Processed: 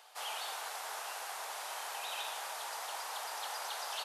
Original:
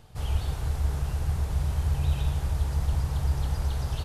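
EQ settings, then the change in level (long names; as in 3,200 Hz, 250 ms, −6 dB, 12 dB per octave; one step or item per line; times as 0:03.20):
high-pass filter 700 Hz 24 dB per octave
+3.5 dB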